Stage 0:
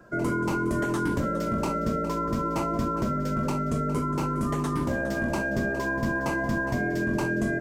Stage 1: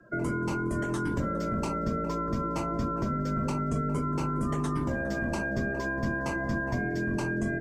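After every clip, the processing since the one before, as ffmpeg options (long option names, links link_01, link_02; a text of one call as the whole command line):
ffmpeg -i in.wav -filter_complex "[0:a]bandreject=frequency=45.83:width_type=h:width=4,bandreject=frequency=91.66:width_type=h:width=4,bandreject=frequency=137.49:width_type=h:width=4,bandreject=frequency=183.32:width_type=h:width=4,bandreject=frequency=229.15:width_type=h:width=4,bandreject=frequency=274.98:width_type=h:width=4,bandreject=frequency=320.81:width_type=h:width=4,bandreject=frequency=366.64:width_type=h:width=4,bandreject=frequency=412.47:width_type=h:width=4,bandreject=frequency=458.3:width_type=h:width=4,bandreject=frequency=504.13:width_type=h:width=4,bandreject=frequency=549.96:width_type=h:width=4,bandreject=frequency=595.79:width_type=h:width=4,bandreject=frequency=641.62:width_type=h:width=4,bandreject=frequency=687.45:width_type=h:width=4,bandreject=frequency=733.28:width_type=h:width=4,bandreject=frequency=779.11:width_type=h:width=4,bandreject=frequency=824.94:width_type=h:width=4,bandreject=frequency=870.77:width_type=h:width=4,bandreject=frequency=916.6:width_type=h:width=4,bandreject=frequency=962.43:width_type=h:width=4,bandreject=frequency=1008.26:width_type=h:width=4,bandreject=frequency=1054.09:width_type=h:width=4,bandreject=frequency=1099.92:width_type=h:width=4,bandreject=frequency=1145.75:width_type=h:width=4,bandreject=frequency=1191.58:width_type=h:width=4,bandreject=frequency=1237.41:width_type=h:width=4,bandreject=frequency=1283.24:width_type=h:width=4,bandreject=frequency=1329.07:width_type=h:width=4,bandreject=frequency=1374.9:width_type=h:width=4,afftdn=noise_reduction=14:noise_floor=-48,acrossover=split=170|3000[link_01][link_02][link_03];[link_02]acompressor=threshold=-29dB:ratio=6[link_04];[link_01][link_04][link_03]amix=inputs=3:normalize=0" out.wav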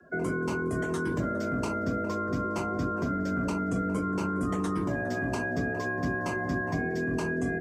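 ffmpeg -i in.wav -af "afreqshift=39" out.wav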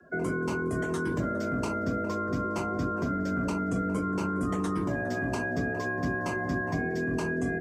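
ffmpeg -i in.wav -af anull out.wav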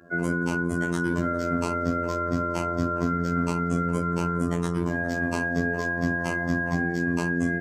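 ffmpeg -i in.wav -af "afftfilt=real='hypot(re,im)*cos(PI*b)':imag='0':win_size=2048:overlap=0.75,volume=7dB" out.wav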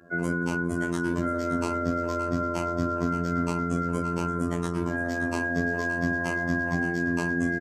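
ffmpeg -i in.wav -af "aecho=1:1:572:0.266,aresample=32000,aresample=44100,volume=-1.5dB" out.wav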